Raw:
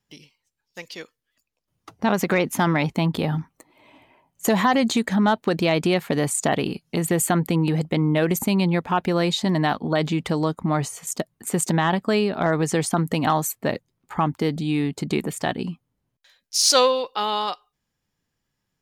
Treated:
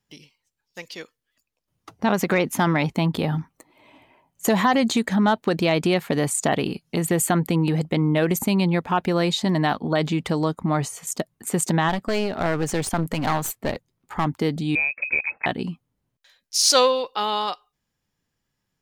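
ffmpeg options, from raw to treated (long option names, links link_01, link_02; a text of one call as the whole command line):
ffmpeg -i in.wav -filter_complex "[0:a]asplit=3[link_01][link_02][link_03];[link_01]afade=type=out:start_time=11.88:duration=0.02[link_04];[link_02]aeval=exprs='clip(val(0),-1,0.0376)':channel_layout=same,afade=type=in:start_time=11.88:duration=0.02,afade=type=out:start_time=14.24:duration=0.02[link_05];[link_03]afade=type=in:start_time=14.24:duration=0.02[link_06];[link_04][link_05][link_06]amix=inputs=3:normalize=0,asettb=1/sr,asplit=3[link_07][link_08][link_09];[link_07]atrim=end=14.754[link_10];[link_08]atrim=start=14.75:end=15.46,asetpts=PTS-STARTPTS,afade=type=in:duration=0.004:curve=qsin,afade=type=out:start_time=0.706:duration=0.004:curve=qsin,lowpass=frequency=2300:width_type=q:width=0.5098,lowpass=frequency=2300:width_type=q:width=0.6013,lowpass=frequency=2300:width_type=q:width=0.9,lowpass=frequency=2300:width_type=q:width=2.563,afreqshift=-2700[link_11];[link_09]atrim=start=15.456[link_12];[link_10][link_11]acrossfade=duration=0.004:curve1=hsin:curve2=qsin[link_13];[link_13][link_12]acrossfade=duration=0.004:curve1=qsin:curve2=hsin" out.wav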